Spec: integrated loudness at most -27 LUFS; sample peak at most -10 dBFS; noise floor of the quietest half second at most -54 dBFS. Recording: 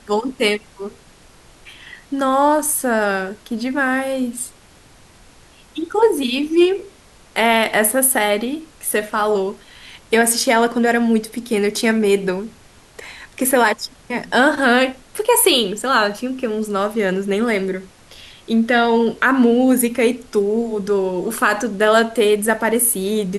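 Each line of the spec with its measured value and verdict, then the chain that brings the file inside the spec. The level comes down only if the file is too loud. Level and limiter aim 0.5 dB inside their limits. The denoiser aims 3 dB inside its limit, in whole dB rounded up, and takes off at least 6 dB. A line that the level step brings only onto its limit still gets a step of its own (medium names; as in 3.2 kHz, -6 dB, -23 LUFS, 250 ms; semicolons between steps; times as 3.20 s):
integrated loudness -17.5 LUFS: fail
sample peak -3.0 dBFS: fail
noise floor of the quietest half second -47 dBFS: fail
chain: trim -10 dB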